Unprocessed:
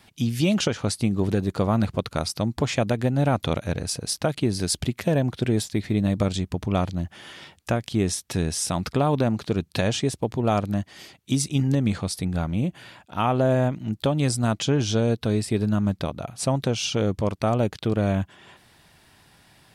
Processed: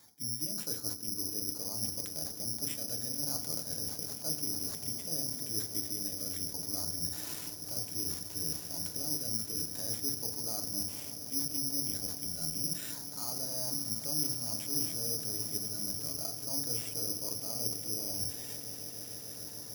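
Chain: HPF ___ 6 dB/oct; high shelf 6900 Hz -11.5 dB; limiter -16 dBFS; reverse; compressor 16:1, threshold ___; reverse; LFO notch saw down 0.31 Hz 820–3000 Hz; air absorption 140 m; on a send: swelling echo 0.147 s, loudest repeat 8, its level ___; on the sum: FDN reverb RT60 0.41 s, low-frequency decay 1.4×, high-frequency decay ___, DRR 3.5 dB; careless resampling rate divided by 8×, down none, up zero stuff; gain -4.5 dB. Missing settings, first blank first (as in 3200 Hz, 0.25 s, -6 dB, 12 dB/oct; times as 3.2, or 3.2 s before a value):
170 Hz, -39 dBFS, -17 dB, 0.3×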